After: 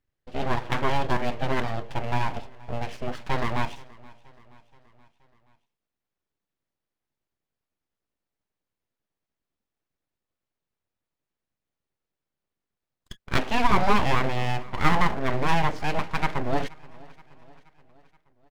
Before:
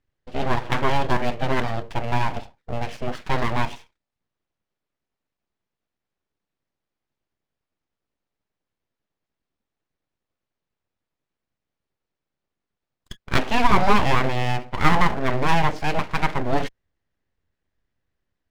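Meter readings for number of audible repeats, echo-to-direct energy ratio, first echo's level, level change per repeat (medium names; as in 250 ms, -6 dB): 3, -21.5 dB, -23.0 dB, -5.0 dB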